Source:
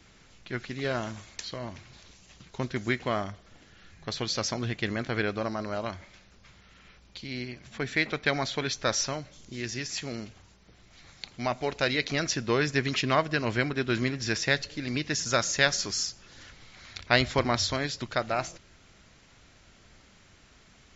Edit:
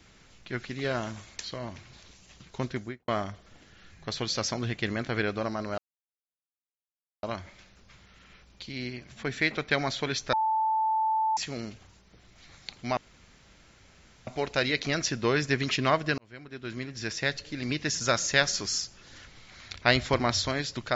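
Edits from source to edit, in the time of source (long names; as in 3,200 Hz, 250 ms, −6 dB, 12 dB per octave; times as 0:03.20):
0:02.65–0:03.08: fade out and dull
0:05.78: splice in silence 1.45 s
0:08.88–0:09.92: beep over 879 Hz −23 dBFS
0:11.52: splice in room tone 1.30 s
0:13.43–0:15.00: fade in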